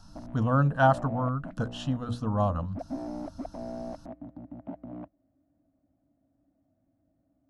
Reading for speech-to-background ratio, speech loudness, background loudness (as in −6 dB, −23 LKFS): 13.5 dB, −28.0 LKFS, −41.5 LKFS